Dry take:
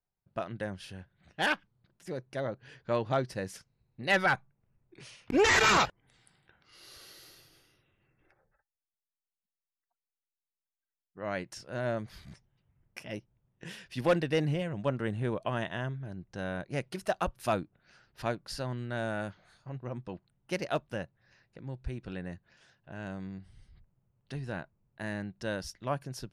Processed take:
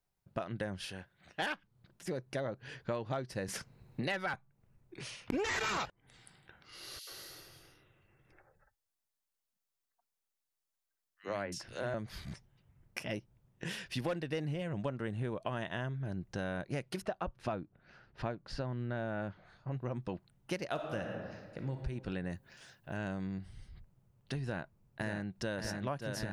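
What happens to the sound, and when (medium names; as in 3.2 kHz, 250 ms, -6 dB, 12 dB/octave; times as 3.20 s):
0.85–1.42 s: bass shelf 230 Hz -11.5 dB
3.48–4.34 s: three bands compressed up and down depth 40%
6.99–11.94 s: three bands offset in time highs, mids, lows 80/110 ms, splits 240/2600 Hz
17.02–19.72 s: tape spacing loss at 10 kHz 23 dB
20.70–21.75 s: reverb throw, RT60 1.3 s, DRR 4.5 dB
22.30–22.97 s: treble shelf 8.3 kHz +11.5 dB
24.42–25.57 s: echo throw 580 ms, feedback 85%, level -5.5 dB
whole clip: compression 6:1, threshold -39 dBFS; trim +5 dB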